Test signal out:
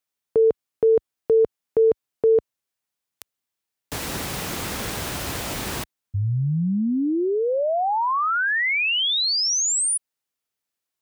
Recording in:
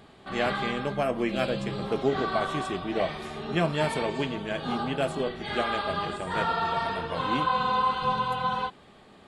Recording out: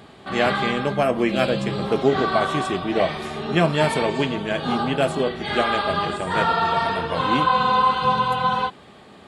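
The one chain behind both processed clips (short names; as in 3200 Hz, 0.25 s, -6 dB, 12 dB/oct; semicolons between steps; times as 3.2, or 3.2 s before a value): HPF 59 Hz; gain +7 dB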